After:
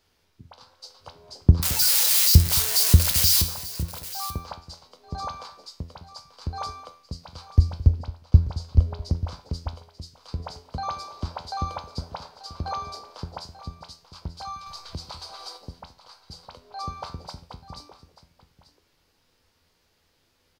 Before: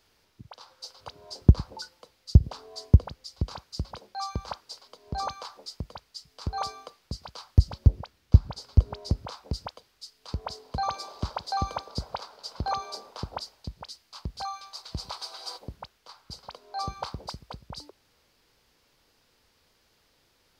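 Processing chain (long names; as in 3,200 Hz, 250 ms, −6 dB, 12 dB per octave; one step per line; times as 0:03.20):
0:01.62–0:03.42: spike at every zero crossing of −9.5 dBFS
low-shelf EQ 240 Hz +3.5 dB
tuned comb filter 84 Hz, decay 0.37 s, harmonics all, mix 70%
multi-tap delay 219/887 ms −17.5/−15.5 dB
0:14.66–0:15.48: multiband upward and downward compressor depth 70%
level +4.5 dB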